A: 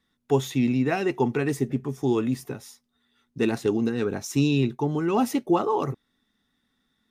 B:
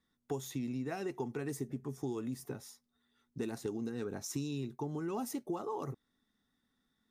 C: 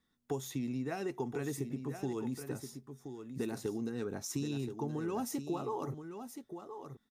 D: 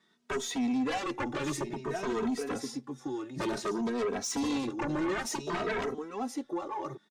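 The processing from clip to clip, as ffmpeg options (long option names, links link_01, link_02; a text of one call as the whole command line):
ffmpeg -i in.wav -filter_complex "[0:a]equalizer=frequency=2700:width_type=o:width=0.91:gain=-5.5,acrossover=split=5600[link_01][link_02];[link_01]acompressor=threshold=-29dB:ratio=6[link_03];[link_03][link_02]amix=inputs=2:normalize=0,volume=-6dB" out.wav
ffmpeg -i in.wav -af "aecho=1:1:1025:0.355,volume=1dB" out.wav
ffmpeg -i in.wav -filter_complex "[0:a]highpass=270,lowpass=6100,aeval=exprs='0.0531*sin(PI/2*3.98*val(0)/0.0531)':channel_layout=same,asplit=2[link_01][link_02];[link_02]adelay=2.8,afreqshift=0.56[link_03];[link_01][link_03]amix=inputs=2:normalize=1" out.wav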